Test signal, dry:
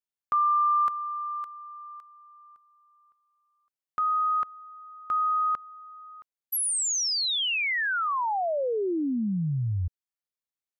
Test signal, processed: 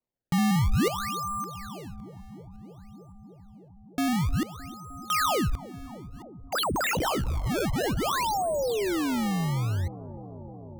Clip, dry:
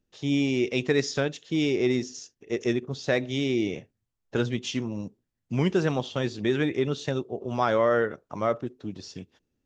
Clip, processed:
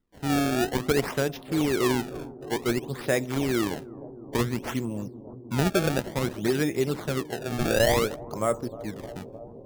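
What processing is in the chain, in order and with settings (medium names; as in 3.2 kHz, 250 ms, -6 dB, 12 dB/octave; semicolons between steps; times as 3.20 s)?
decimation with a swept rate 25×, swing 160% 0.56 Hz; bucket-brigade echo 307 ms, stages 2048, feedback 85%, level -18 dB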